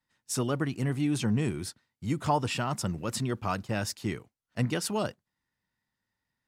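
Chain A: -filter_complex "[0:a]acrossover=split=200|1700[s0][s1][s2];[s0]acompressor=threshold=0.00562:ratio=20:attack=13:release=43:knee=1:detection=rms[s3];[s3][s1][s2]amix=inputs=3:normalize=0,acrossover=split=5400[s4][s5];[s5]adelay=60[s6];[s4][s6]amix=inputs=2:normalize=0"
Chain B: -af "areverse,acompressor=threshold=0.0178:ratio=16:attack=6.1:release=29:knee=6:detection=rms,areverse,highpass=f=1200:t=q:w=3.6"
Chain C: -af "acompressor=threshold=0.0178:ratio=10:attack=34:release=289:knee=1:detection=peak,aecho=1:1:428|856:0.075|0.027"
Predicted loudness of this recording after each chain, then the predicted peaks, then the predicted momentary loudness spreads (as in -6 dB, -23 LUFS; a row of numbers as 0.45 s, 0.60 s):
-33.5 LUFS, -39.5 LUFS, -38.0 LUFS; -12.5 dBFS, -22.0 dBFS, -19.0 dBFS; 9 LU, 13 LU, 6 LU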